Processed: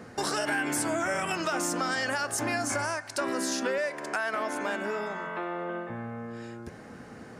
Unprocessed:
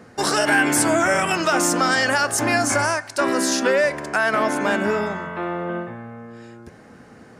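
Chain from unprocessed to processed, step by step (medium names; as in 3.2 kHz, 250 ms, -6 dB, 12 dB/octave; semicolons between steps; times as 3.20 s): compression 2.5:1, threshold -32 dBFS, peak gain reduction 12.5 dB; 3.78–5.90 s: Bessel high-pass 290 Hz, order 2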